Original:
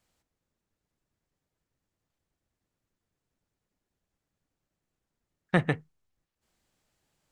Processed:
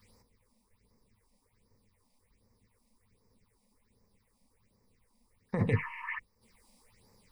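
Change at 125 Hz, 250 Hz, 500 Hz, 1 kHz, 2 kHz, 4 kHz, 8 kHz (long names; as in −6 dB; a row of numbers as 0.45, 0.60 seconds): 0.0 dB, −4.0 dB, −4.0 dB, −5.0 dB, −3.5 dB, below −10 dB, can't be measured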